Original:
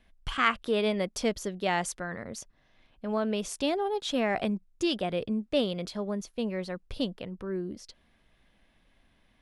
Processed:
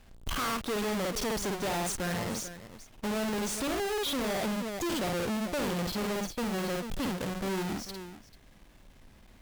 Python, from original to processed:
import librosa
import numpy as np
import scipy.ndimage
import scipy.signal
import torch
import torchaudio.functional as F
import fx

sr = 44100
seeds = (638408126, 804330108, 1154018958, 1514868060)

y = fx.halfwave_hold(x, sr)
y = fx.echo_multitap(y, sr, ms=(52, 440), db=(-4.5, -17.5))
y = fx.tube_stage(y, sr, drive_db=35.0, bias=0.4)
y = y * librosa.db_to_amplitude(5.0)